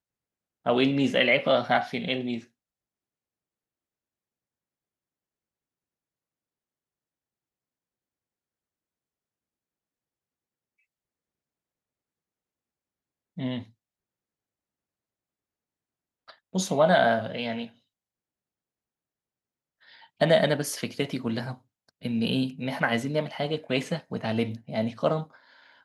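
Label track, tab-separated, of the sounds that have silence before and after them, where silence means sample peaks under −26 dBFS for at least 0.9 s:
13.410000	13.580000	sound
16.550000	17.630000	sound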